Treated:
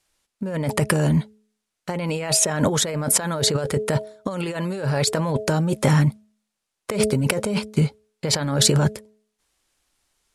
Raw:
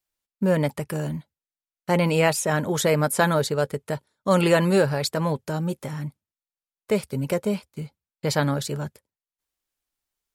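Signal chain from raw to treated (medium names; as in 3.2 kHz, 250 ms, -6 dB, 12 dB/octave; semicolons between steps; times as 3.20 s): low-pass 11 kHz 24 dB/octave; de-hum 213.7 Hz, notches 3; compressor with a negative ratio -31 dBFS, ratio -1; trim +9 dB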